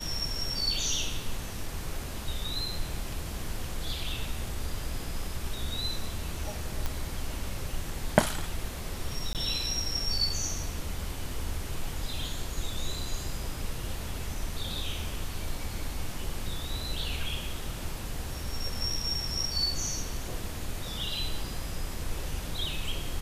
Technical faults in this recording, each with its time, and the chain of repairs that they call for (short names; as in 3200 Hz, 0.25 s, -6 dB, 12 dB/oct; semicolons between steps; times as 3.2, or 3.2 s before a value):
6.86 pop
9.33–9.35 gap 18 ms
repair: de-click; interpolate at 9.33, 18 ms